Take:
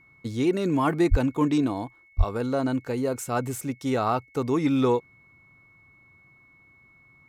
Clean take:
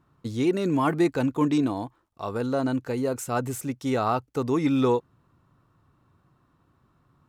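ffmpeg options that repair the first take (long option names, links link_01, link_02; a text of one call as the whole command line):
ffmpeg -i in.wav -filter_complex "[0:a]bandreject=frequency=2200:width=30,asplit=3[link_01][link_02][link_03];[link_01]afade=type=out:start_time=1.1:duration=0.02[link_04];[link_02]highpass=frequency=140:width=0.5412,highpass=frequency=140:width=1.3066,afade=type=in:start_time=1.1:duration=0.02,afade=type=out:start_time=1.22:duration=0.02[link_05];[link_03]afade=type=in:start_time=1.22:duration=0.02[link_06];[link_04][link_05][link_06]amix=inputs=3:normalize=0,asplit=3[link_07][link_08][link_09];[link_07]afade=type=out:start_time=2.17:duration=0.02[link_10];[link_08]highpass=frequency=140:width=0.5412,highpass=frequency=140:width=1.3066,afade=type=in:start_time=2.17:duration=0.02,afade=type=out:start_time=2.29:duration=0.02[link_11];[link_09]afade=type=in:start_time=2.29:duration=0.02[link_12];[link_10][link_11][link_12]amix=inputs=3:normalize=0" out.wav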